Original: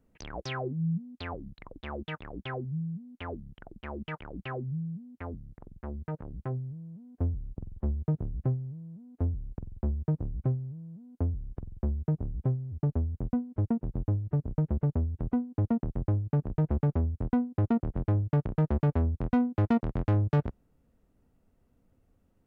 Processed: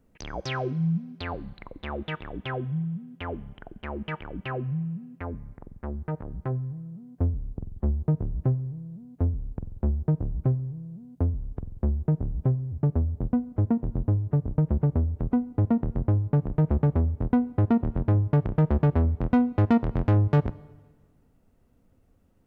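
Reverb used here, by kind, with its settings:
four-comb reverb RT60 1.5 s, combs from 30 ms, DRR 20 dB
level +4.5 dB

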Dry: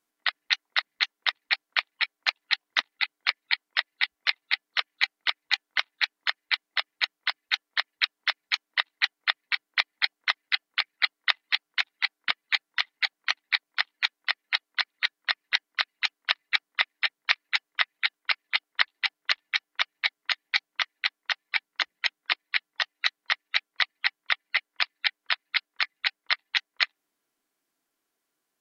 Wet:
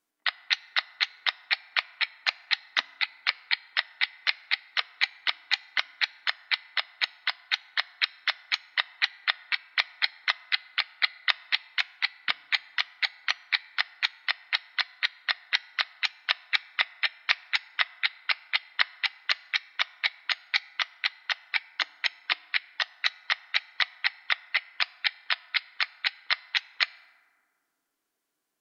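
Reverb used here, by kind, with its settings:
feedback delay network reverb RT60 1.9 s, low-frequency decay 0.8×, high-frequency decay 0.4×, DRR 18.5 dB
level −1 dB

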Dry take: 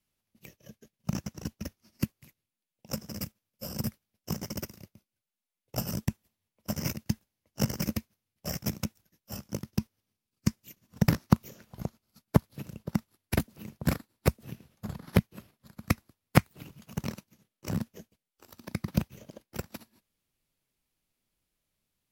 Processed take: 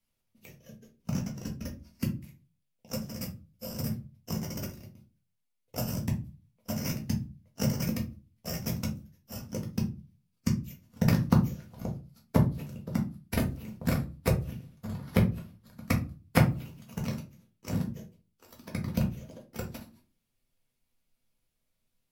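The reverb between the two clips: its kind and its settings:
rectangular room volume 130 cubic metres, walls furnished, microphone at 1.7 metres
level −4 dB

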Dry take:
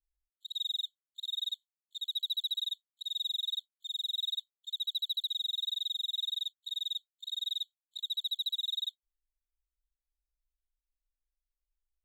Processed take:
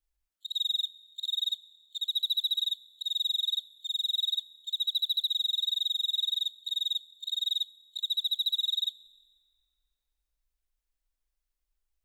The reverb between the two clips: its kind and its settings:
feedback delay network reverb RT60 2.3 s, high-frequency decay 0.7×, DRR 17.5 dB
level +5 dB

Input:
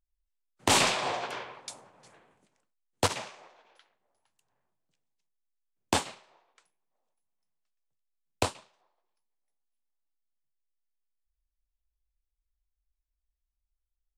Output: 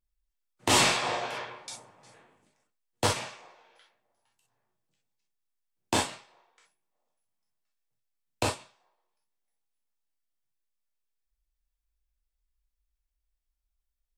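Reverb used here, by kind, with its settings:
reverb whose tail is shaped and stops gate 80 ms flat, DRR −2.5 dB
level −3 dB

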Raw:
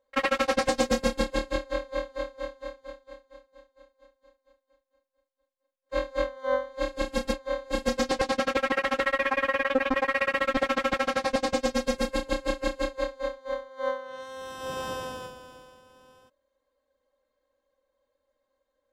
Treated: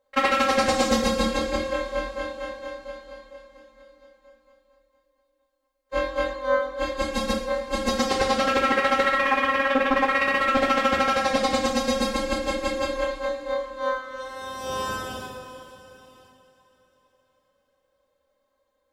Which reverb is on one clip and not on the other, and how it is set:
coupled-rooms reverb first 0.56 s, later 4.3 s, from −18 dB, DRR 0 dB
level +2 dB

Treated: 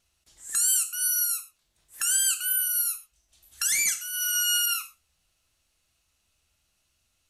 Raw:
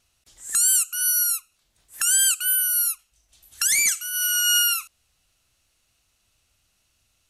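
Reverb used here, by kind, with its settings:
reverb whose tail is shaped and stops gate 150 ms falling, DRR 6.5 dB
level −5 dB

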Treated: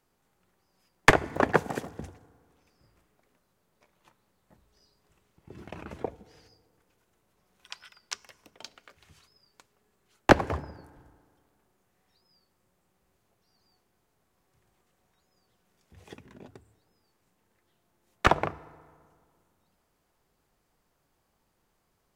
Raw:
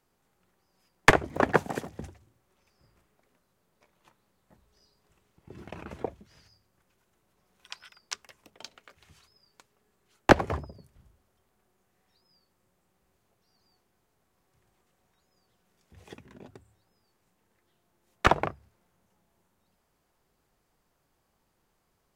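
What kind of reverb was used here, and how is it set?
feedback delay network reverb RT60 1.9 s, low-frequency decay 1.05×, high-frequency decay 0.55×, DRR 20 dB

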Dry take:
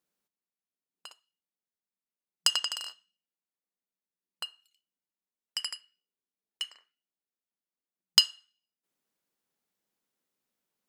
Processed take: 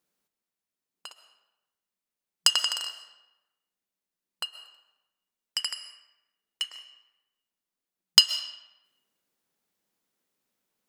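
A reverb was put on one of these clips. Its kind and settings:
comb and all-pass reverb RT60 1 s, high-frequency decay 0.75×, pre-delay 90 ms, DRR 12 dB
level +4 dB

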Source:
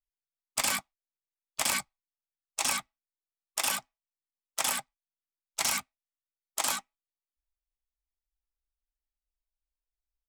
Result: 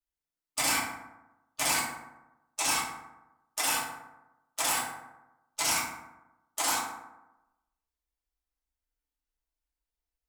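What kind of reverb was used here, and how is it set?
feedback delay network reverb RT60 0.98 s, low-frequency decay 1.05×, high-frequency decay 0.45×, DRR −7.5 dB
level −5 dB

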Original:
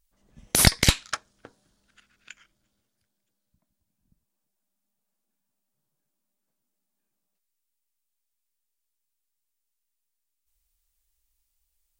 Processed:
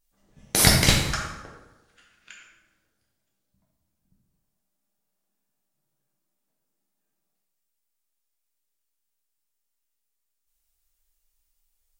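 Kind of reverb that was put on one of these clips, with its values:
dense smooth reverb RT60 1.1 s, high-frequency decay 0.65×, DRR −3.5 dB
level −2.5 dB

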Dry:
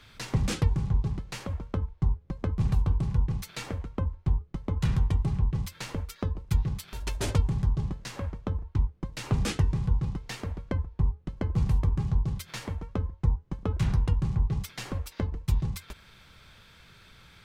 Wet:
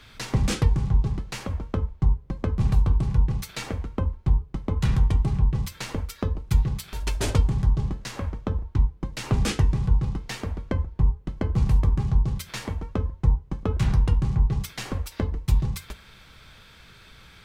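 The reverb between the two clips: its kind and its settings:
coupled-rooms reverb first 0.28 s, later 1.6 s, from −27 dB, DRR 12 dB
level +4 dB

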